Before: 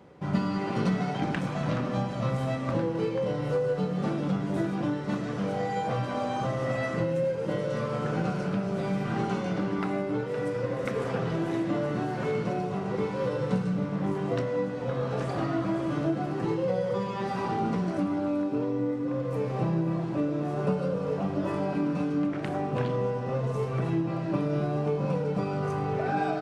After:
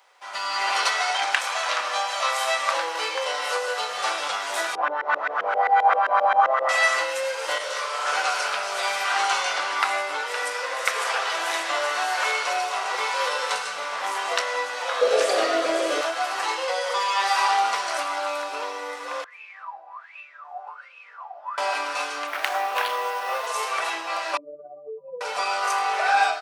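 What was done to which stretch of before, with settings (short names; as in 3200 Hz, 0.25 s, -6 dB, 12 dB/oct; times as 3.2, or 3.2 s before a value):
0.74–3.68 HPF 250 Hz 24 dB/oct
4.75–6.69 LFO low-pass saw up 7.6 Hz 380–1900 Hz
7.58–8.07 detuned doubles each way 58 cents
15.01–16.01 resonant low shelf 660 Hz +11 dB, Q 3
19.24–21.58 wah 1.3 Hz 720–2600 Hz, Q 17
22.27–23.47 decimation joined by straight lines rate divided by 3×
24.37–25.21 spectral contrast raised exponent 3.5
whole clip: HPF 770 Hz 24 dB/oct; high shelf 2600 Hz +11.5 dB; AGC gain up to 12 dB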